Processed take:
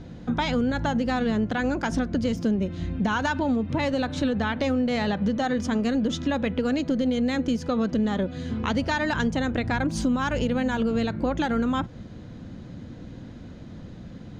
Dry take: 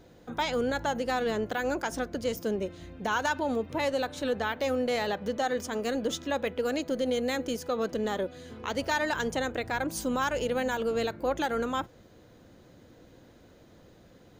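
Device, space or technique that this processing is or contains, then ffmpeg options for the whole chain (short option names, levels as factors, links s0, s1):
jukebox: -af "lowpass=5500,lowshelf=f=300:t=q:w=1.5:g=8.5,acompressor=threshold=0.0316:ratio=4,volume=2.51"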